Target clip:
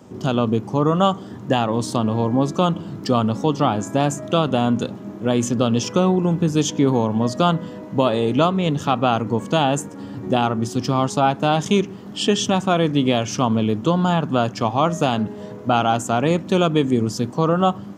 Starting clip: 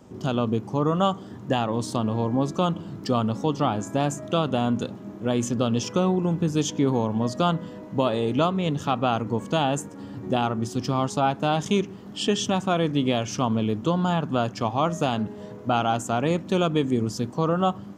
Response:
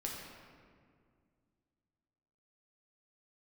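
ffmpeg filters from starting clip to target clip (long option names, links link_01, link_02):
-af "highpass=76,volume=5dB"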